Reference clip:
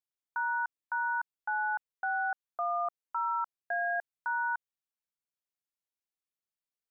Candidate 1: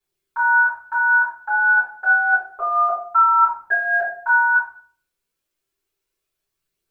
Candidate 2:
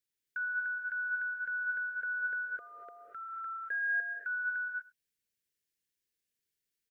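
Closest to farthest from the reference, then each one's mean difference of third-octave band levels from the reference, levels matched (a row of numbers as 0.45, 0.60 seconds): 1, 2; 3.5, 5.0 decibels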